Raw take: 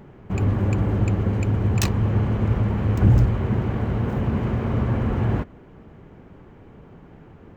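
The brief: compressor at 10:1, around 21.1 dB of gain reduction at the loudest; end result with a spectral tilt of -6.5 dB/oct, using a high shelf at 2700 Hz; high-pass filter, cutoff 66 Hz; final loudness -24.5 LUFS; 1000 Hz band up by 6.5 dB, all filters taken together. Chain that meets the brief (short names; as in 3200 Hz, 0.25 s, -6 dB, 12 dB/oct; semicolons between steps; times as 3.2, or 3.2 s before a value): HPF 66 Hz; bell 1000 Hz +7 dB; high shelf 2700 Hz +7.5 dB; compressor 10:1, threshold -33 dBFS; gain +13.5 dB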